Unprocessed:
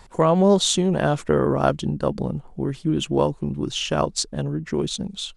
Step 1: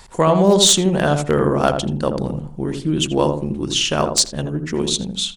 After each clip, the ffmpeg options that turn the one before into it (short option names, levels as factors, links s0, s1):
-filter_complex "[0:a]highshelf=f=2200:g=9,aeval=exprs='0.501*(abs(mod(val(0)/0.501+3,4)-2)-1)':c=same,asplit=2[s0][s1];[s1]adelay=82,lowpass=f=800:p=1,volume=0.631,asplit=2[s2][s3];[s3]adelay=82,lowpass=f=800:p=1,volume=0.34,asplit=2[s4][s5];[s5]adelay=82,lowpass=f=800:p=1,volume=0.34,asplit=2[s6][s7];[s7]adelay=82,lowpass=f=800:p=1,volume=0.34[s8];[s2][s4][s6][s8]amix=inputs=4:normalize=0[s9];[s0][s9]amix=inputs=2:normalize=0,volume=1.19"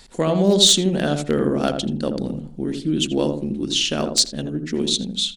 -af "equalizer=f=100:t=o:w=0.67:g=-10,equalizer=f=250:t=o:w=0.67:g=7,equalizer=f=1000:t=o:w=0.67:g=-9,equalizer=f=4000:t=o:w=0.67:g=6,volume=0.631"